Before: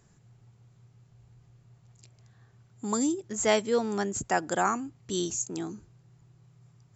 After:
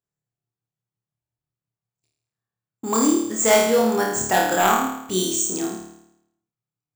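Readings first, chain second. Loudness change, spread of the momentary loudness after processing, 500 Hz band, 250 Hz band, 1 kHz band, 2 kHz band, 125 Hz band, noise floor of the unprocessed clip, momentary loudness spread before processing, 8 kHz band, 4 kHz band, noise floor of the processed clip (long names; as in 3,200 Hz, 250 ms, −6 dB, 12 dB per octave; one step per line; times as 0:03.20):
+9.5 dB, 10 LU, +8.5 dB, +8.0 dB, +9.5 dB, +9.5 dB, +4.5 dB, −62 dBFS, 11 LU, can't be measured, +9.5 dB, below −85 dBFS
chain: noise gate −49 dBFS, range −36 dB
wave folding −18 dBFS
low-shelf EQ 130 Hz −10 dB
on a send: flutter between parallel walls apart 4.6 metres, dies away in 0.78 s
on the sum: bad sample-rate conversion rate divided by 3×, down none, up hold
level +6.5 dB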